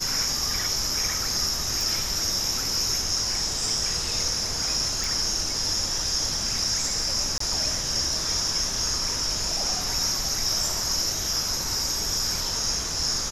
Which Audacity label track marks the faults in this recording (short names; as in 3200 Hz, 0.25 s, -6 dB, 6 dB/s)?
1.810000	1.810000	pop
5.040000	5.040000	pop
7.380000	7.400000	gap 24 ms